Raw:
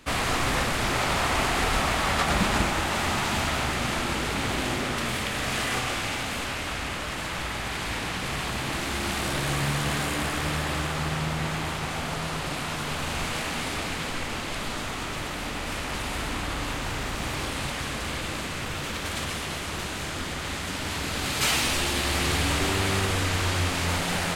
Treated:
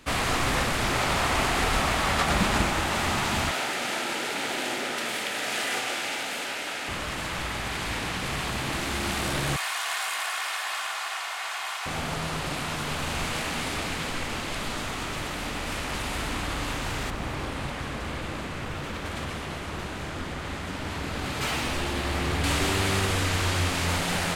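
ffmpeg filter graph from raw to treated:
ffmpeg -i in.wav -filter_complex "[0:a]asettb=1/sr,asplit=3[link_01][link_02][link_03];[link_01]atrim=end=3.514[link_04];[link_02]atrim=start=3.51:end=6.88,asetpts=PTS-STARTPTS,afade=type=in:duration=0.004:curve=qsin,afade=type=out:start_time=3.366:duration=0.004:curve=qsin,highpass=340,bandreject=frequency=1100:width=5.6[link_05];[link_03]atrim=start=6.876[link_06];[link_04][link_05]acrossfade=duration=0.004:curve1=hsin:curve2=qsin[link_07];[link_07][link_06]acrossfade=duration=0.004:curve1=qsin:curve2=hsin,asettb=1/sr,asplit=3[link_08][link_09][link_10];[link_08]atrim=end=9.564[link_11];[link_09]atrim=start=9.56:end=11.86,asetpts=PTS-STARTPTS,afade=type=in:duration=0.004:curve=qsin,afade=type=out:start_time=2.296:duration=0.004:curve=qsin,highpass=frequency=780:width=0.5412,highpass=frequency=780:width=1.3066,aecho=1:1:2.8:0.37,atrim=end_sample=101430[link_12];[link_10]atrim=start=11.856[link_13];[link_11][link_12]acrossfade=duration=0.004:curve1=hsin:curve2=qsin[link_14];[link_14][link_13]acrossfade=duration=0.004:curve1=qsin:curve2=hsin,asettb=1/sr,asplit=3[link_15][link_16][link_17];[link_15]atrim=end=17.104[link_18];[link_16]atrim=start=17.1:end=22.44,asetpts=PTS-STARTPTS,afade=type=in:duration=0.004:curve=qsin,afade=type=out:start_time=5.336:duration=0.004:curve=qsin,asoftclip=type=hard:threshold=-18.5dB,highshelf=frequency=2800:gain=-10.5[link_19];[link_17]atrim=start=22.436[link_20];[link_18][link_19]acrossfade=duration=0.004:curve1=hsin:curve2=qsin[link_21];[link_21][link_20]acrossfade=duration=0.004:curve1=qsin:curve2=hsin" out.wav

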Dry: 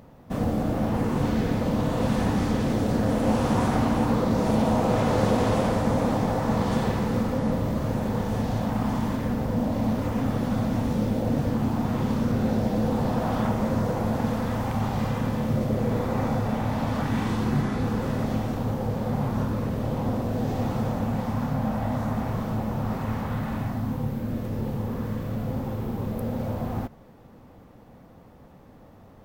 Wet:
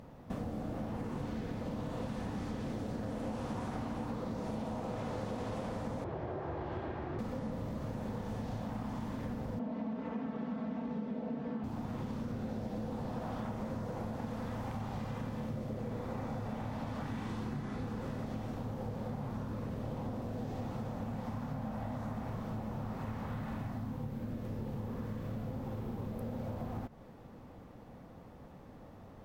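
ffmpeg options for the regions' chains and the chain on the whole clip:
ffmpeg -i in.wav -filter_complex "[0:a]asettb=1/sr,asplit=3[link_01][link_02][link_03];[link_01]atrim=end=6.044[link_04];[link_02]atrim=start=6.04:end=7.19,asetpts=PTS-STARTPTS,afade=type=in:duration=0.004:curve=qsin,afade=type=out:start_time=1.146:duration=0.004:curve=qsin,afreqshift=-140,highpass=110,lowpass=2200[link_05];[link_03]atrim=start=7.186[link_06];[link_04][link_05]acrossfade=duration=0.004:curve1=hsin:curve2=qsin[link_07];[link_07][link_06]acrossfade=duration=0.004:curve1=qsin:curve2=hsin,asettb=1/sr,asplit=3[link_08][link_09][link_10];[link_08]atrim=end=9.594[link_11];[link_09]atrim=start=9.59:end=11.64,asetpts=PTS-STARTPTS,afade=type=in:duration=0.004:curve=qsin,afade=type=out:start_time=2.046:duration=0.004:curve=qsin,highpass=150,lowpass=2700,aecho=1:1:4.5:0.9,atrim=end_sample=90405[link_12];[link_10]atrim=start=11.636[link_13];[link_11][link_12]acrossfade=duration=0.004:curve1=hsin:curve2=qsin[link_14];[link_14][link_13]acrossfade=duration=0.004:curve1=qsin:curve2=hsin,highshelf=frequency=12000:gain=-8,acompressor=threshold=-34dB:ratio=6,volume=-2.5dB" out.wav

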